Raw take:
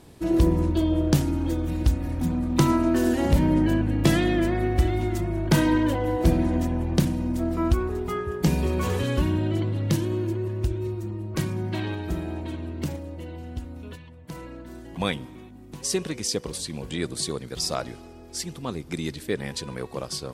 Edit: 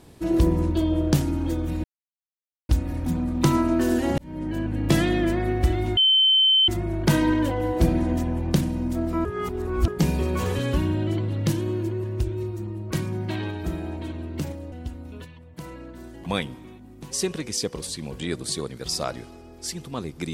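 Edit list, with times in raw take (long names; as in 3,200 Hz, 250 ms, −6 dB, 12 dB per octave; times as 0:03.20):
0:01.84: splice in silence 0.85 s
0:03.33–0:04.09: fade in
0:05.12: insert tone 3,080 Hz −14.5 dBFS 0.71 s
0:07.69–0:08.32: reverse
0:13.16–0:13.43: remove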